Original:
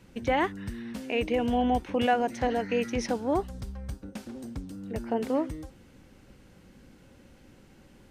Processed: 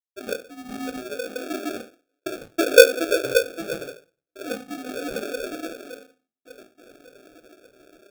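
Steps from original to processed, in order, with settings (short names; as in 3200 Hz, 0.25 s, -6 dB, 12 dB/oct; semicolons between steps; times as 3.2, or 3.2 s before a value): sine-wave speech; vocal rider within 3 dB 0.5 s; treble ducked by the level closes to 350 Hz, closed at -26 dBFS; 0.93–1.35 compressor, threshold -33 dBFS, peak gain reduction 5.5 dB; 1.86–2.78 band shelf 560 Hz +14.5 dB 1.1 oct; dark delay 0.574 s, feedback 53%, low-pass 530 Hz, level -8 dB; dynamic EQ 230 Hz, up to +4 dB, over -34 dBFS, Q 0.75; step gate ".x.xxxxxxxx.." 93 bpm -60 dB; reverb RT60 0.35 s, pre-delay 3 ms, DRR -8.5 dB; sample-rate reducer 1000 Hz, jitter 0%; gain -7 dB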